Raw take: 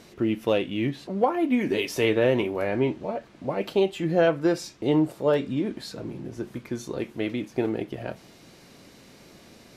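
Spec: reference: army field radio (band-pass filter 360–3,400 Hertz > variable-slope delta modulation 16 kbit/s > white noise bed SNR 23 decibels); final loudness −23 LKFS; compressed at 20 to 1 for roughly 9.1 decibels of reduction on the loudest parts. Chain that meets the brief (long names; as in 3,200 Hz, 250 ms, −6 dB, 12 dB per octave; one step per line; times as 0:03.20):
downward compressor 20 to 1, threshold −25 dBFS
band-pass filter 360–3,400 Hz
variable-slope delta modulation 16 kbit/s
white noise bed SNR 23 dB
level +12.5 dB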